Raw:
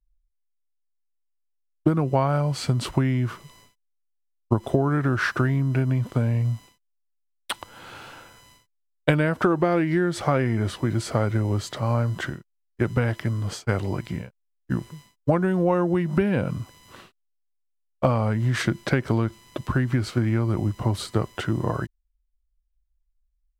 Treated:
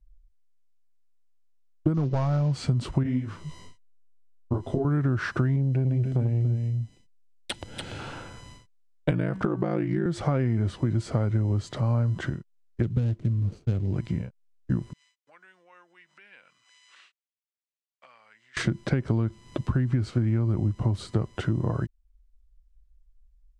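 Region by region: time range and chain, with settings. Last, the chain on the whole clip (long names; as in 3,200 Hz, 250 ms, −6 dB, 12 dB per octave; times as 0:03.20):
0:01.94–0:02.53: variable-slope delta modulation 32 kbit/s + gain into a clipping stage and back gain 18 dB
0:03.03–0:04.85: double-tracking delay 12 ms −5 dB + micro pitch shift up and down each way 51 cents
0:05.56–0:07.99: parametric band 1,100 Hz −15 dB 0.57 octaves + single-tap delay 288 ms −7.5 dB + saturating transformer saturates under 320 Hz
0:09.10–0:10.06: ring modulation 28 Hz + hum removal 189.2 Hz, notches 21
0:12.82–0:13.96: running median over 25 samples + parametric band 880 Hz −10 dB 1.8 octaves
0:14.93–0:18.57: high-shelf EQ 2,800 Hz −7.5 dB + downward compressor 2 to 1, threshold −45 dBFS + Chebyshev band-pass filter 2,100–8,200 Hz
whole clip: low-pass filter 9,000 Hz 24 dB per octave; low-shelf EQ 380 Hz +11.5 dB; downward compressor 2 to 1, threshold −34 dBFS; level +2 dB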